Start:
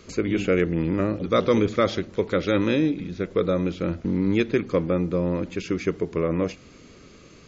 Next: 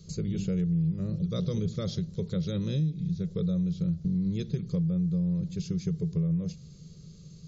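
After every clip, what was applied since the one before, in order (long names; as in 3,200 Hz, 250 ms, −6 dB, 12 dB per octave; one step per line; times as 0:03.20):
drawn EQ curve 110 Hz 0 dB, 160 Hz +13 dB, 270 Hz −20 dB, 420 Hz −11 dB, 840 Hz −22 dB, 2,400 Hz −22 dB, 4,100 Hz −3 dB
downward compressor 6 to 1, threshold −25 dBFS, peak gain reduction 10 dB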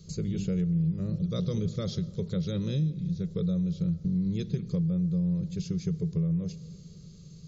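convolution reverb RT60 1.9 s, pre-delay 85 ms, DRR 20 dB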